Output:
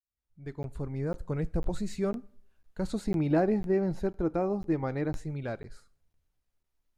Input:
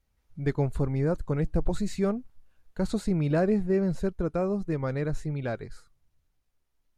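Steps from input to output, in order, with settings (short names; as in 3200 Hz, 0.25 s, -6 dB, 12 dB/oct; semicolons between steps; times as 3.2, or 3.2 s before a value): opening faded in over 1.36 s; 3.04–5.17 thirty-one-band EQ 315 Hz +9 dB, 800 Hz +11 dB, 2000 Hz +3 dB, 8000 Hz -8 dB; two-slope reverb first 0.47 s, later 1.5 s, from -28 dB, DRR 18 dB; crackling interface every 0.50 s, samples 512, zero, from 0.63; gain -4 dB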